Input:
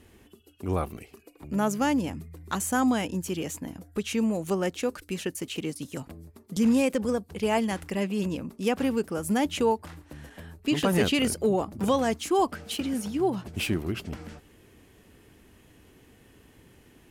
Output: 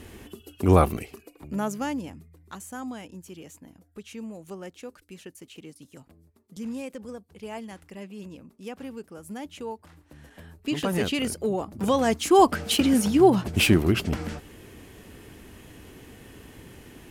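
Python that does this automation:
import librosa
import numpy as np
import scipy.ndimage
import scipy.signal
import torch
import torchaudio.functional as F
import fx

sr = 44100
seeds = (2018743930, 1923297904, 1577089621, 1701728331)

y = fx.gain(x, sr, db=fx.line((0.9, 10.5), (1.56, -2.0), (2.66, -12.0), (9.64, -12.0), (10.41, -2.5), (11.62, -2.5), (12.54, 9.0)))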